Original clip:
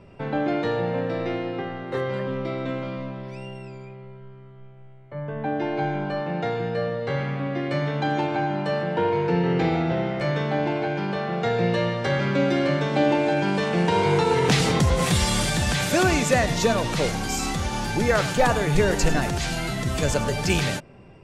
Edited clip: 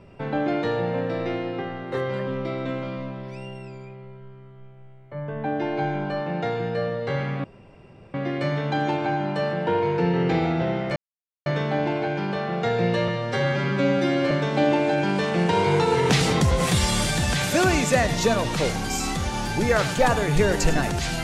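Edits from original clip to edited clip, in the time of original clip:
7.44 s: insert room tone 0.70 s
10.26 s: insert silence 0.50 s
11.88–12.70 s: stretch 1.5×

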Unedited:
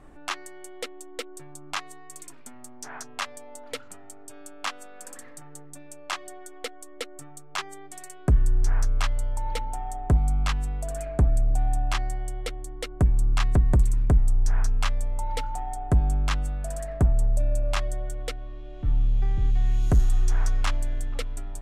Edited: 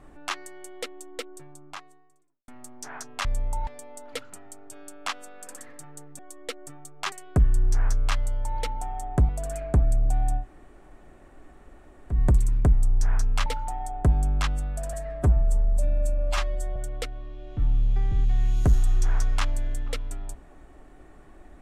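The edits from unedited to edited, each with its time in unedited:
1.04–2.48 s: studio fade out
5.77–6.71 s: delete
7.64–8.04 s: delete
10.21–10.74 s: delete
11.86–13.59 s: room tone, crossfade 0.10 s
14.91–15.33 s: move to 3.25 s
16.80–18.02 s: stretch 1.5×

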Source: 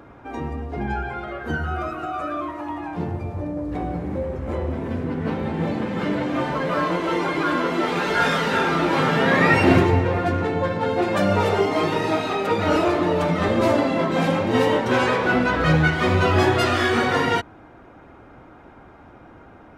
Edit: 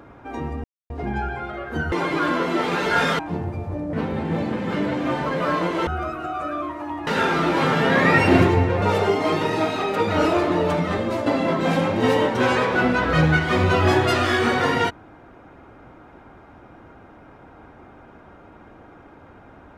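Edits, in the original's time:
0.64 s: insert silence 0.26 s
1.66–2.86 s: swap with 7.16–8.43 s
3.60–5.22 s: delete
10.18–11.33 s: delete
13.22–13.77 s: fade out, to -9 dB

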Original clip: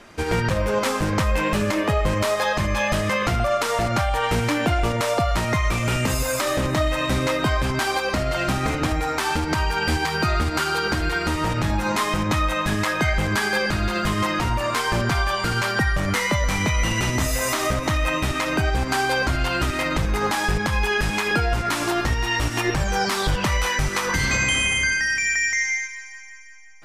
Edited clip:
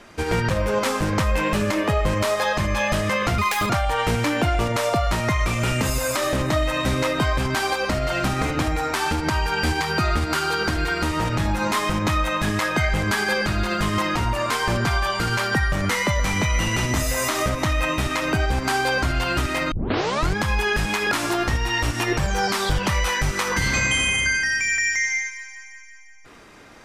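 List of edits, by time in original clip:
3.38–3.94 s: speed 177%
19.96 s: tape start 0.65 s
21.36–21.69 s: delete

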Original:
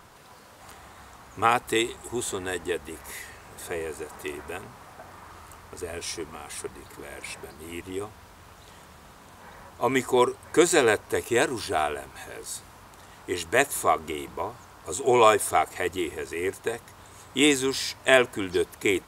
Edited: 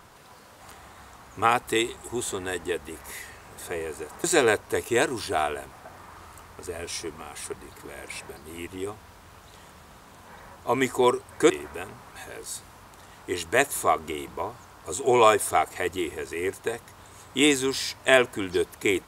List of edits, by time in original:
4.24–4.86 s: swap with 10.64–12.12 s

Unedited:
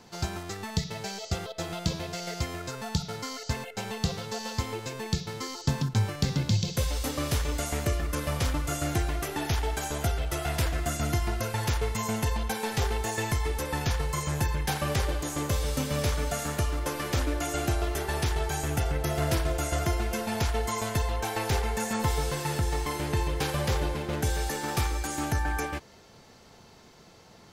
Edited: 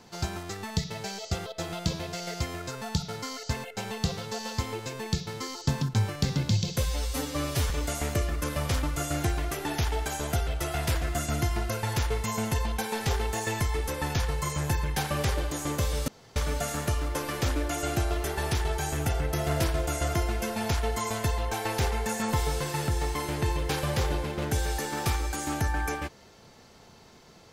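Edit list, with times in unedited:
6.83–7.41 s: stretch 1.5×
15.79–16.07 s: room tone

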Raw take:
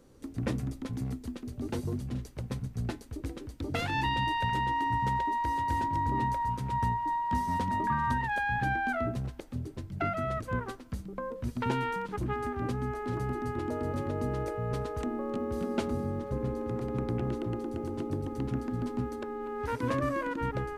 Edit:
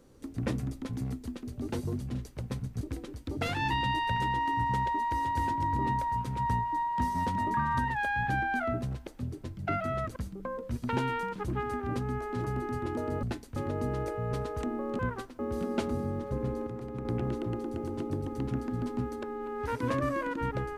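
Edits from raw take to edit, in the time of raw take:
2.81–3.14 s: move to 13.96 s
10.49–10.89 s: move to 15.39 s
16.67–17.05 s: gain -5.5 dB

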